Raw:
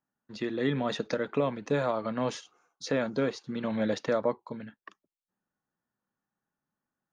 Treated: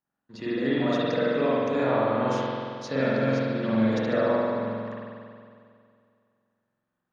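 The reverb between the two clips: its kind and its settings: spring tank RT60 2.3 s, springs 45 ms, chirp 30 ms, DRR -9.5 dB; gain -4 dB

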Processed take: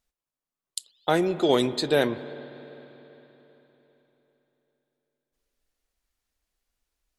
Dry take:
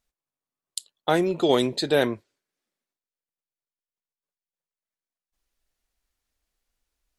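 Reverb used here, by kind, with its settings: spring tank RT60 3.8 s, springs 49/56 ms, chirp 80 ms, DRR 14 dB; gain -1 dB

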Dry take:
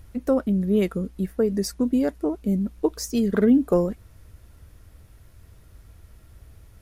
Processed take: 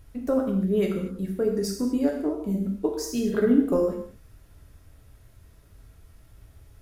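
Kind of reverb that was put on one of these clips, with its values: non-linear reverb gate 0.27 s falling, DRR 0 dB; gain -5 dB

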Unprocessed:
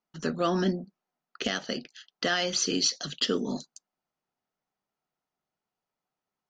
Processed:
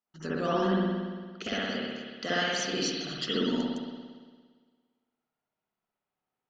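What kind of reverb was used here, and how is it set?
spring tank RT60 1.6 s, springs 57 ms, chirp 75 ms, DRR -8 dB; gain -8 dB

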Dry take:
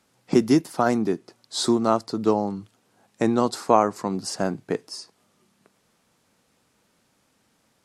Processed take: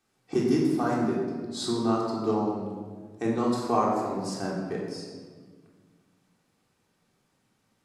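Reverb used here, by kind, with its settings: shoebox room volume 1700 m³, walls mixed, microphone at 3.6 m; gain -12 dB

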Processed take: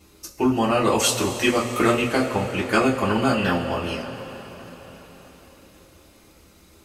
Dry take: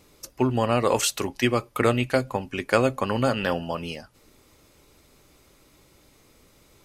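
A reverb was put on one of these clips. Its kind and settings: two-slope reverb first 0.21 s, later 4.8 s, from -20 dB, DRR -5.5 dB; gain -3 dB

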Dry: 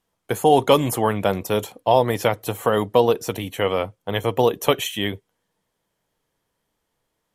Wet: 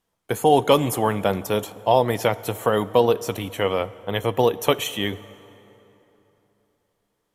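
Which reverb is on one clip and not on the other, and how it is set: plate-style reverb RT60 3.4 s, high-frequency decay 0.65×, DRR 17 dB; gain -1 dB

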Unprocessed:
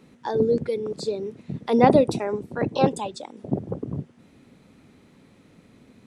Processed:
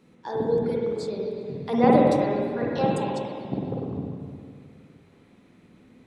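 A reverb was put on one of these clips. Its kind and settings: spring tank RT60 2.2 s, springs 47/51/57 ms, chirp 75 ms, DRR -3 dB; gain -6 dB

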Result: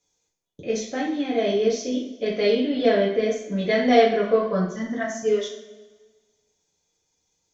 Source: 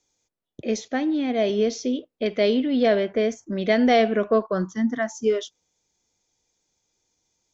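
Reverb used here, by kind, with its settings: two-slope reverb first 0.48 s, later 1.5 s, from -15 dB, DRR -5.5 dB; gain -6 dB

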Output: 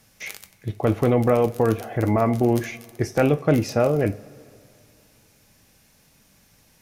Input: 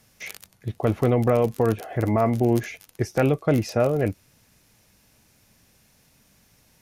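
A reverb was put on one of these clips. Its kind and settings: two-slope reverb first 0.27 s, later 2.6 s, from -20 dB, DRR 9 dB; gain +1.5 dB

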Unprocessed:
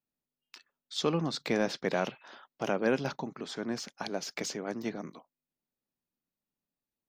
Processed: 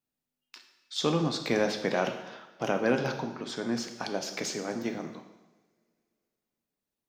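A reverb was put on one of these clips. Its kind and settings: two-slope reverb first 0.98 s, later 3 s, from -26 dB, DRR 5 dB; gain +1.5 dB

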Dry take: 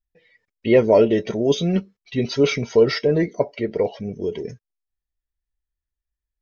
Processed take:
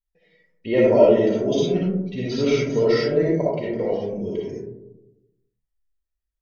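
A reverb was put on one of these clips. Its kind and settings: digital reverb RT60 0.95 s, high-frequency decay 0.25×, pre-delay 20 ms, DRR -5.5 dB; gain -8 dB

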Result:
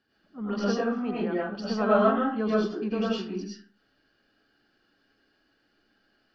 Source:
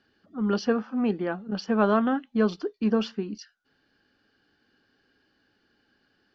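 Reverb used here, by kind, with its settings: digital reverb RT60 0.46 s, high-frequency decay 0.6×, pre-delay 65 ms, DRR -7.5 dB; gain -7.5 dB

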